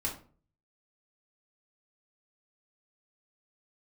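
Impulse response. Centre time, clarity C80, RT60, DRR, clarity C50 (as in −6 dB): 20 ms, 14.5 dB, 0.40 s, −3.5 dB, 9.0 dB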